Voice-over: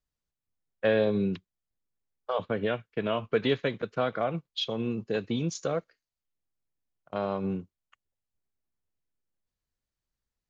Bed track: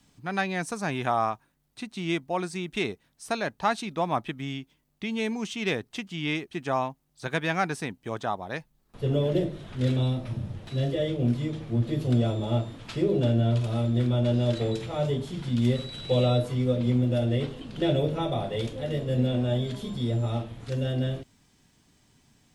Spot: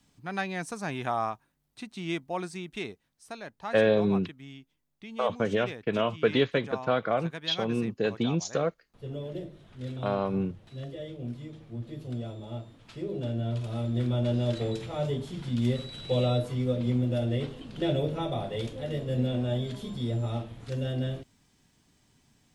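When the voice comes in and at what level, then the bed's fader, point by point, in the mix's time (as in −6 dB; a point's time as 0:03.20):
2.90 s, +2.0 dB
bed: 0:02.46 −4 dB
0:03.33 −12 dB
0:12.78 −12 dB
0:14.10 −3 dB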